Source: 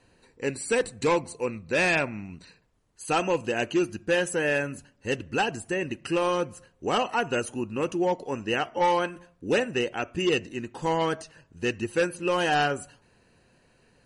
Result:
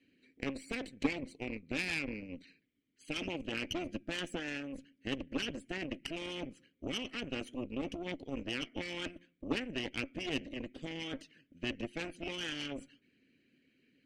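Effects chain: vowel filter i; in parallel at -1.5 dB: negative-ratio compressor -45 dBFS, ratio -0.5; on the sum: added harmonics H 3 -15 dB, 6 -21 dB, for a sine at -23.5 dBFS; harmonic-percussive split harmonic -7 dB; gain +7 dB

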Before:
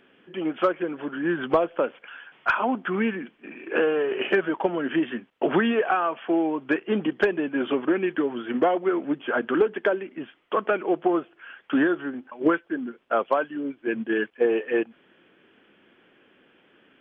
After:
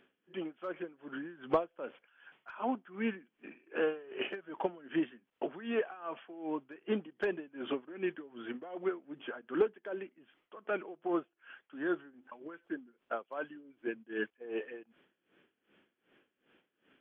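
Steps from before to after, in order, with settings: dB-linear tremolo 2.6 Hz, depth 20 dB; gain -7.5 dB

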